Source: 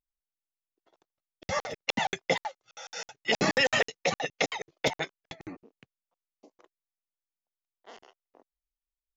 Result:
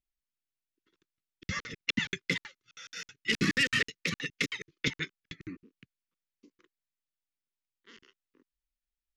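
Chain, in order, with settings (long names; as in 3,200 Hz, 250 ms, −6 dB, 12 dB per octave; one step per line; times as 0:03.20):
0:02.22–0:04.71: phase distortion by the signal itself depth 0.059 ms
Butterworth band-reject 710 Hz, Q 0.54
high-shelf EQ 5,300 Hz −11.5 dB
level +2.5 dB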